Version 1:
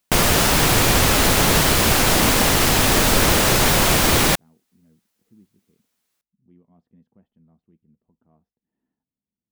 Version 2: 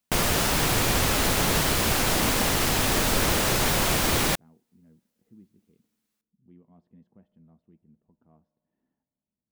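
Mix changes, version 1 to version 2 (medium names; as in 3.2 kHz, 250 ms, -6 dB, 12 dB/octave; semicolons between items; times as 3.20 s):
background -7.0 dB; reverb: on, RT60 2.7 s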